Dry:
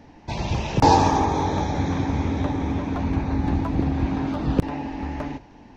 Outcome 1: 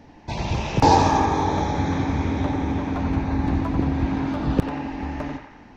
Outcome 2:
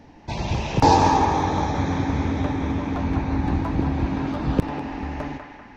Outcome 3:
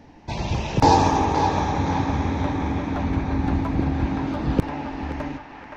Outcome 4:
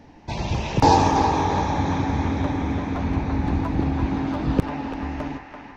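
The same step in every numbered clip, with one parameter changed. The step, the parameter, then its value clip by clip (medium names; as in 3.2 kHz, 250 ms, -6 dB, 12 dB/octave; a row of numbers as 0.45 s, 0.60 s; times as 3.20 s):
band-passed feedback delay, time: 90 ms, 195 ms, 521 ms, 337 ms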